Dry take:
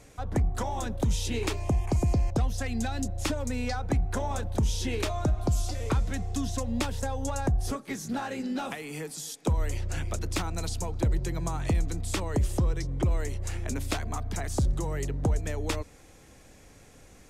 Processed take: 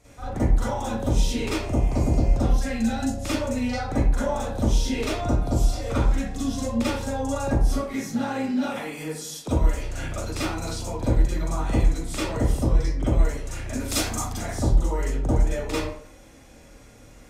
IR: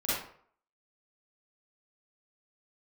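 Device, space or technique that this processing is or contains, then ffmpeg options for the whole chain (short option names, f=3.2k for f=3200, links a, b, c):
bathroom: -filter_complex "[0:a]asettb=1/sr,asplit=3[a][b][c];[a]atrim=end=13.884[d];[b]atrim=start=13.88:end=14.33,asetpts=PTS-STARTPTS,afade=t=in:d=0.004:c=qsin,afade=t=out:st=0.446:d=0.004:c=qsin,bass=f=250:g=1,treble=f=4k:g=14[e];[c]atrim=start=14.326[f];[d][e]acrossfade=d=0.004:c1=hsin:c2=qsin[g];[g][f]acrossfade=d=0.004:c1=qsin:c2=hsin[h];[1:a]atrim=start_sample=2205[i];[h][i]afir=irnorm=-1:irlink=0,volume=-3.5dB"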